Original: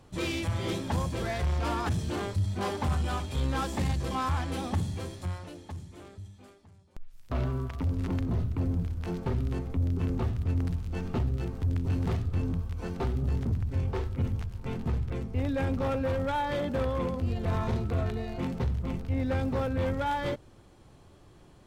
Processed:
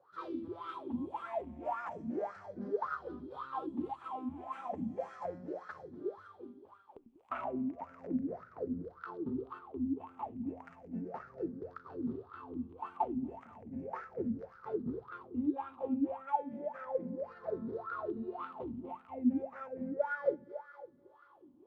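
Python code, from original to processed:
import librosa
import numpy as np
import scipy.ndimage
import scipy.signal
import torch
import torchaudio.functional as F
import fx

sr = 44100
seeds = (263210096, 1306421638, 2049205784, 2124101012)

y = fx.spec_ripple(x, sr, per_octave=0.59, drift_hz=-0.34, depth_db=11)
y = fx.low_shelf(y, sr, hz=150.0, db=-7.0)
y = fx.echo_split(y, sr, split_hz=460.0, low_ms=95, high_ms=242, feedback_pct=52, wet_db=-12)
y = fx.rider(y, sr, range_db=10, speed_s=0.5)
y = fx.wah_lfo(y, sr, hz=1.8, low_hz=230.0, high_hz=1400.0, q=13.0)
y = F.gain(torch.from_numpy(y), 8.0).numpy()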